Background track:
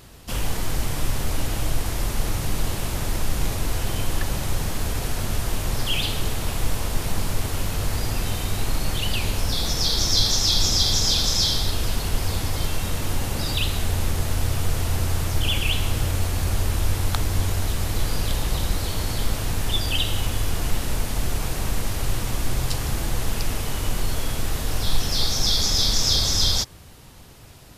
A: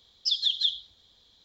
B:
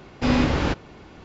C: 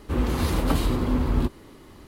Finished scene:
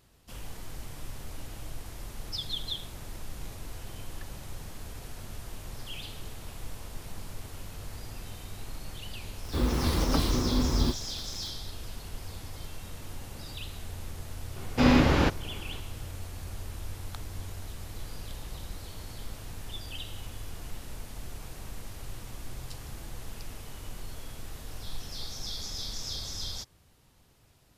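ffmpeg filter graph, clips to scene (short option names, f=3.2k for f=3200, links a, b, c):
-filter_complex "[0:a]volume=-16.5dB[a];[3:a]acrusher=bits=6:mix=0:aa=0.000001[b];[1:a]atrim=end=1.44,asetpts=PTS-STARTPTS,volume=-10dB,afade=t=in:d=0.004:c=hsin,afade=t=out:st=1.436:d=0.004:c=hsin,adelay=2070[c];[b]atrim=end=2.07,asetpts=PTS-STARTPTS,volume=-3.5dB,afade=t=in:d=0.004:c=hsin,afade=t=out:st=2.066:d=0.004:c=hsin,adelay=9440[d];[2:a]atrim=end=1.24,asetpts=PTS-STARTPTS,volume=-0.5dB,afade=t=in:d=0.004:c=hsin,afade=t=out:st=1.236:d=0.004:c=hsin,adelay=14560[e];[a][c][d][e]amix=inputs=4:normalize=0"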